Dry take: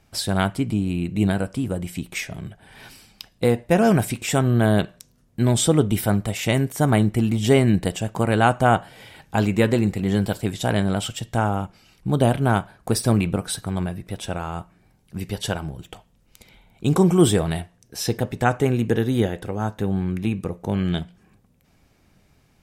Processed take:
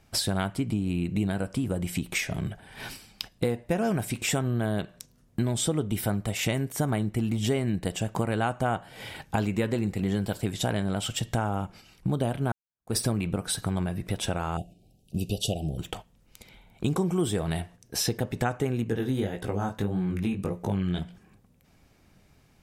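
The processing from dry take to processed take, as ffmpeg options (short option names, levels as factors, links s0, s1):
-filter_complex "[0:a]asettb=1/sr,asplit=3[s0][s1][s2];[s0]atrim=end=14.574[s3];[s1]atrim=start=14.57:end=15.78,asetpts=PTS-STARTPTS,afade=t=in:d=0.004:c=qsin,afade=t=out:st=1.206:d=0.004:c=qsin,asuperstop=centerf=1400:order=20:qfactor=0.78[s4];[s2]atrim=start=15.776[s5];[s3][s4]acrossfade=d=0.004:c1=hsin:c2=qsin[s6];[s6][s5]acrossfade=d=0.004:c1=qsin:c2=hsin,asettb=1/sr,asplit=3[s7][s8][s9];[s7]atrim=end=18.844[s10];[s8]atrim=start=18.84:end=20.99,asetpts=PTS-STARTPTS,afade=t=in:d=0.004:c=qsin,afade=t=out:st=2.146:d=0.004:c=qsin,flanger=delay=16.5:depth=6.3:speed=1.7[s11];[s9]atrim=start=20.986[s12];[s10][s11]acrossfade=d=0.004:c1=hsin:c2=qsin[s13];[s13][s12]acrossfade=d=0.004:c1=qsin:c2=hsin,asplit=2[s14][s15];[s14]atrim=end=12.52,asetpts=PTS-STARTPTS,afade=t=out:st=12.516:d=0.004:c=hsin[s16];[s15]atrim=start=12.52,asetpts=PTS-STARTPTS,afade=t=in:d=0.45:c=exp[s17];[s16][s17]concat=n=2:v=0:a=1,agate=range=0.501:threshold=0.00562:ratio=16:detection=peak,acompressor=threshold=0.0282:ratio=4,volume=1.78"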